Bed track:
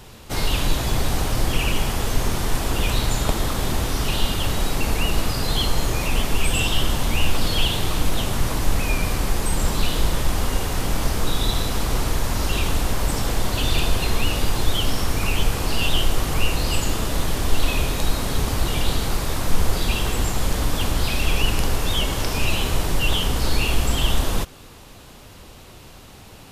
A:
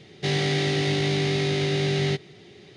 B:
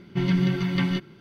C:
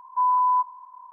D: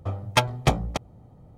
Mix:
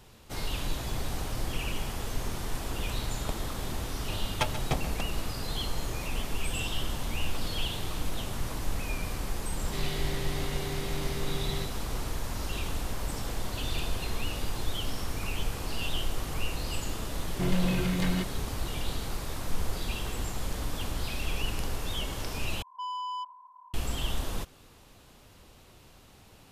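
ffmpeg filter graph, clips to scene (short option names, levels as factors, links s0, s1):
-filter_complex "[0:a]volume=0.266[s0];[4:a]aecho=1:1:134:0.237[s1];[2:a]volume=15.8,asoftclip=hard,volume=0.0631[s2];[3:a]asoftclip=type=tanh:threshold=0.0531[s3];[s0]asplit=2[s4][s5];[s4]atrim=end=22.624[s6];[s3]atrim=end=1.12,asetpts=PTS-STARTPTS,volume=0.398[s7];[s5]atrim=start=23.736[s8];[s1]atrim=end=1.57,asetpts=PTS-STARTPTS,volume=0.335,afade=t=in:d=0.004:c=hsin,afade=t=out:st=1.566:d=0.004:c=hsin,adelay=4040[s9];[1:a]atrim=end=2.76,asetpts=PTS-STARTPTS,volume=0.224,afade=t=in:d=0.004:c=hsin,afade=t=out:st=2.756:d=0.004:c=hsin,adelay=9490[s10];[s2]atrim=end=1.2,asetpts=PTS-STARTPTS,volume=0.794,afade=t=in:d=0.004:c=hsin,afade=t=out:st=1.196:d=0.004:c=hsin,adelay=17240[s11];[s6][s7]acrossfade=d=0.004:c1=hsin:c2=hsin[s12];[s12][s8]acrossfade=d=0.004:c1=hsin:c2=hsin[s13];[s13][s9][s10][s11]amix=inputs=4:normalize=0"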